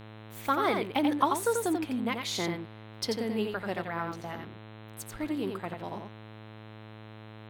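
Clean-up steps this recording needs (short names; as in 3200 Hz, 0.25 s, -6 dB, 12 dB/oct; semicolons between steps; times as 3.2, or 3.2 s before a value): de-hum 108.6 Hz, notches 38; interpolate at 4.12, 1 ms; inverse comb 88 ms -5 dB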